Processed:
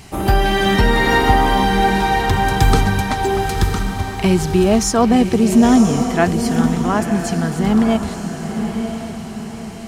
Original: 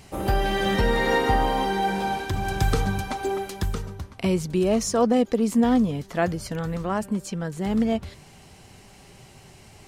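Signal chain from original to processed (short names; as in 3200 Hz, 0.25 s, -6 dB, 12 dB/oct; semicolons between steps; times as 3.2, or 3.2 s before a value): bell 520 Hz -12.5 dB 0.23 oct; diffused feedback echo 0.974 s, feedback 44%, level -6.5 dB; gain +8.5 dB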